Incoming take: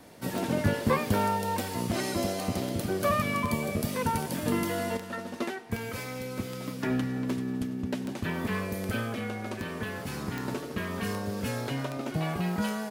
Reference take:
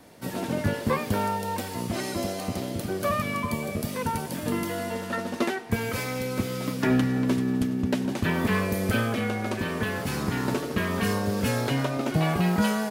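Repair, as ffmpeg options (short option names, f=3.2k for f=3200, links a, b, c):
-af "adeclick=t=4,asetnsamples=n=441:p=0,asendcmd='4.97 volume volume 6.5dB',volume=0dB"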